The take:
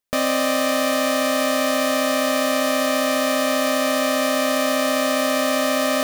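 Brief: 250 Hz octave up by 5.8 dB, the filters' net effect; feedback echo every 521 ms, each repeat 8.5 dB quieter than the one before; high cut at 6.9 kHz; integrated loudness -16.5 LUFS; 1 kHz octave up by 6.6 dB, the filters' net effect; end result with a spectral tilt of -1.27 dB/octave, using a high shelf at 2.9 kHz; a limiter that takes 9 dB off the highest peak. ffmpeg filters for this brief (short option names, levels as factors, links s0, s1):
-af "lowpass=6900,equalizer=f=250:t=o:g=5.5,equalizer=f=1000:t=o:g=7.5,highshelf=f=2900:g=5.5,alimiter=limit=0.2:level=0:latency=1,aecho=1:1:521|1042|1563|2084:0.376|0.143|0.0543|0.0206,volume=1.58"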